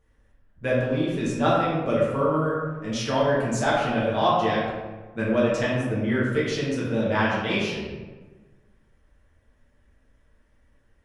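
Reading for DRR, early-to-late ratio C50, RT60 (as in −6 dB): −7.5 dB, 0.0 dB, 1.3 s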